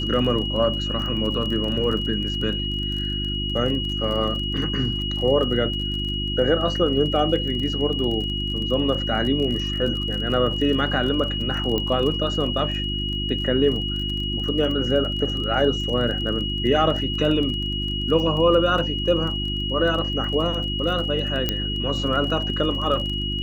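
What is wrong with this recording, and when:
crackle 26 per s -29 dBFS
hum 50 Hz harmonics 7 -28 dBFS
whine 2.9 kHz -27 dBFS
4.57 s: dropout 4.2 ms
11.78 s: pop -11 dBFS
21.49 s: pop -7 dBFS

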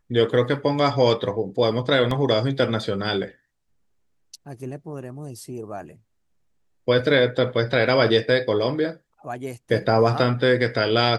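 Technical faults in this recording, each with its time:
2.11 s: dropout 3.2 ms

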